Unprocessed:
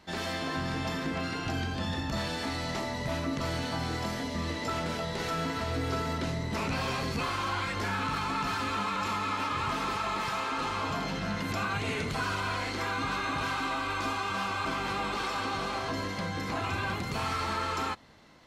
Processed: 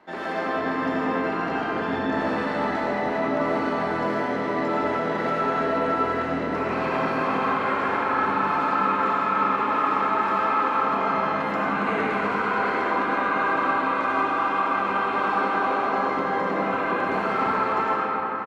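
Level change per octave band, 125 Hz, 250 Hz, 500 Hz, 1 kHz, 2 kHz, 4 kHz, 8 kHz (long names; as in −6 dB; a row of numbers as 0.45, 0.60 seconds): −3.0 dB, +7.5 dB, +11.0 dB, +10.5 dB, +7.0 dB, −4.5 dB, below −10 dB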